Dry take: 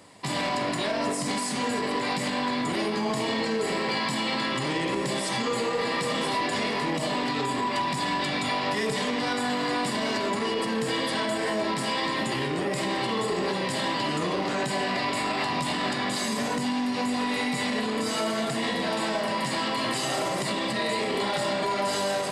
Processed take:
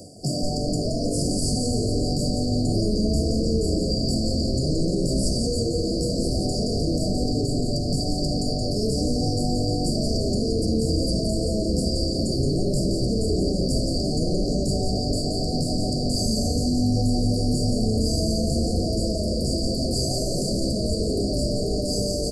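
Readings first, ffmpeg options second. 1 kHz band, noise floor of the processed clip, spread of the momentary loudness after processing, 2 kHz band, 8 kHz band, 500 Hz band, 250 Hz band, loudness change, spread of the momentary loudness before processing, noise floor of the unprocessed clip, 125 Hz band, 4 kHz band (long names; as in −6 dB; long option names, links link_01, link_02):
−10.5 dB, −26 dBFS, 2 LU, below −40 dB, +4.5 dB, +2.5 dB, +6.0 dB, +3.0 dB, 1 LU, −29 dBFS, +13.5 dB, +1.5 dB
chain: -filter_complex "[0:a]afftfilt=real='re*(1-between(b*sr/4096,760,4400))':imag='im*(1-between(b*sr/4096,760,4400))':win_size=4096:overlap=0.75,bandreject=frequency=60:width_type=h:width=6,bandreject=frequency=120:width_type=h:width=6,bandreject=frequency=180:width_type=h:width=6,bandreject=frequency=240:width_type=h:width=6,bandreject=frequency=300:width_type=h:width=6,bandreject=frequency=360:width_type=h:width=6,asplit=8[link_01][link_02][link_03][link_04][link_05][link_06][link_07][link_08];[link_02]adelay=173,afreqshift=-140,volume=-5dB[link_09];[link_03]adelay=346,afreqshift=-280,volume=-10.7dB[link_10];[link_04]adelay=519,afreqshift=-420,volume=-16.4dB[link_11];[link_05]adelay=692,afreqshift=-560,volume=-22dB[link_12];[link_06]adelay=865,afreqshift=-700,volume=-27.7dB[link_13];[link_07]adelay=1038,afreqshift=-840,volume=-33.4dB[link_14];[link_08]adelay=1211,afreqshift=-980,volume=-39.1dB[link_15];[link_01][link_09][link_10][link_11][link_12][link_13][link_14][link_15]amix=inputs=8:normalize=0,areverse,acompressor=mode=upward:threshold=-35dB:ratio=2.5,areverse,equalizer=frequency=4600:width=6.2:gain=5,asplit=2[link_16][link_17];[link_17]alimiter=level_in=3dB:limit=-24dB:level=0:latency=1:release=228,volume=-3dB,volume=0dB[link_18];[link_16][link_18]amix=inputs=2:normalize=0,acrossover=split=440|3000[link_19][link_20][link_21];[link_20]acompressor=threshold=-33dB:ratio=6[link_22];[link_19][link_22][link_21]amix=inputs=3:normalize=0,lowshelf=frequency=140:gain=10"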